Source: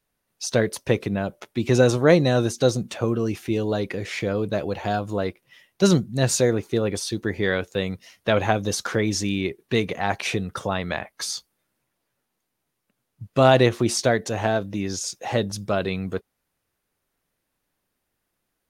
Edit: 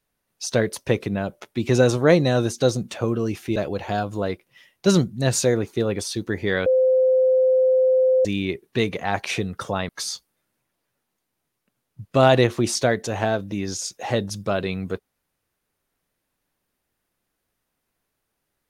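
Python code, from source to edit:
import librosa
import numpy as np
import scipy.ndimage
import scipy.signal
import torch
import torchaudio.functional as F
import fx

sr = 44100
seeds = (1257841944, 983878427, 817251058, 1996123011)

y = fx.edit(x, sr, fx.cut(start_s=3.56, length_s=0.96),
    fx.bleep(start_s=7.62, length_s=1.59, hz=517.0, db=-14.0),
    fx.cut(start_s=10.85, length_s=0.26), tone=tone)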